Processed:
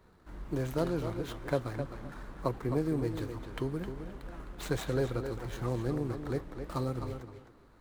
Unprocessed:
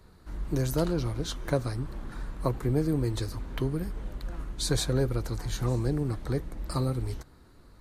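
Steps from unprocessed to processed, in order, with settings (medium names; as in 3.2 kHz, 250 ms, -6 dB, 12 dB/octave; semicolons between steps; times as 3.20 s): median filter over 9 samples; bass shelf 170 Hz -8.5 dB; on a send: tape echo 260 ms, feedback 22%, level -7 dB, low-pass 5.2 kHz; on the sum: trim -1.5 dB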